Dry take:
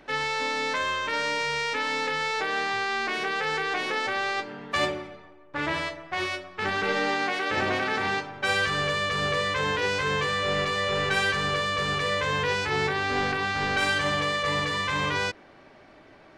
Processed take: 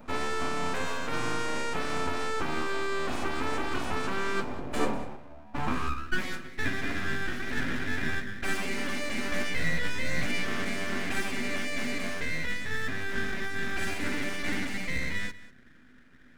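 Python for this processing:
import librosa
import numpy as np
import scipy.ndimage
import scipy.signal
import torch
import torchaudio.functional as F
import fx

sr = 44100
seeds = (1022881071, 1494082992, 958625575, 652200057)

y = fx.filter_sweep_highpass(x, sr, from_hz=74.0, to_hz=920.0, start_s=4.29, end_s=6.25, q=4.9)
y = fx.band_shelf(y, sr, hz=2600.0, db=-13.5, octaves=2.5)
y = fx.rider(y, sr, range_db=10, speed_s=0.5)
y = np.abs(y)
y = fx.small_body(y, sr, hz=(250.0, 2400.0), ring_ms=85, db=12)
y = fx.doubler(y, sr, ms=17.0, db=-2, at=(9.3, 10.45))
y = y + 10.0 ** (-17.5 / 20.0) * np.pad(y, (int(194 * sr / 1000.0), 0))[:len(y)]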